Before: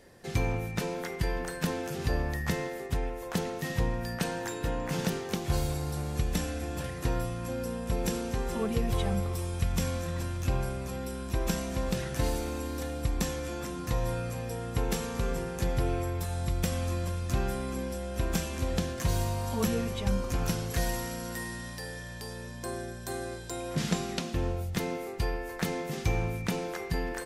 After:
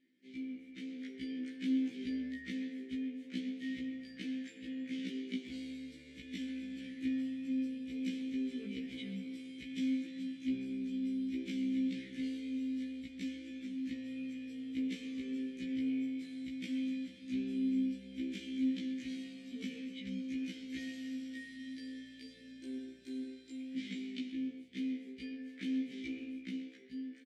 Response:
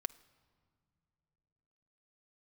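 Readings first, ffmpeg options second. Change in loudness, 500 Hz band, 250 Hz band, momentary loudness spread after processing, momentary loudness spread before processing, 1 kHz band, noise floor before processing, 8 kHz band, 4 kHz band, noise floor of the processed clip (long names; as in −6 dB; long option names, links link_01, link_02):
−7.0 dB, −20.5 dB, −0.5 dB, 10 LU, 6 LU, below −35 dB, −40 dBFS, below −20 dB, −9.5 dB, −55 dBFS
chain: -filter_complex "[0:a]equalizer=frequency=125:width_type=o:width=1:gain=-6,equalizer=frequency=250:width_type=o:width=1:gain=10,equalizer=frequency=1000:width_type=o:width=1:gain=-6,equalizer=frequency=2000:width_type=o:width=1:gain=7,equalizer=frequency=4000:width_type=o:width=1:gain=7,equalizer=frequency=8000:width_type=o:width=1:gain=8,dynaudnorm=framelen=140:gausssize=13:maxgain=11.5dB,asplit=3[link_01][link_02][link_03];[link_01]bandpass=frequency=270:width_type=q:width=8,volume=0dB[link_04];[link_02]bandpass=frequency=2290:width_type=q:width=8,volume=-6dB[link_05];[link_03]bandpass=frequency=3010:width_type=q:width=8,volume=-9dB[link_06];[link_04][link_05][link_06]amix=inputs=3:normalize=0,flanger=delay=5:depth=9:regen=89:speed=0.49:shape=triangular,asplit=2[link_07][link_08];[link_08]adelay=130,highpass=300,lowpass=3400,asoftclip=type=hard:threshold=-28dB,volume=-12dB[link_09];[link_07][link_09]amix=inputs=2:normalize=0,afftfilt=real='re*1.73*eq(mod(b,3),0)':imag='im*1.73*eq(mod(b,3),0)':win_size=2048:overlap=0.75,volume=-5.5dB"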